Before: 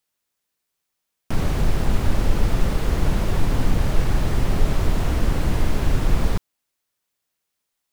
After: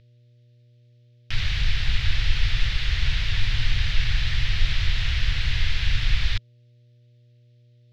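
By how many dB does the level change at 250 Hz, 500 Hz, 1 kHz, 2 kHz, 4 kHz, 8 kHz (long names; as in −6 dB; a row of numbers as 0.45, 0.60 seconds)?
−16.5, −21.5, −11.5, +5.5, +9.5, −6.0 decibels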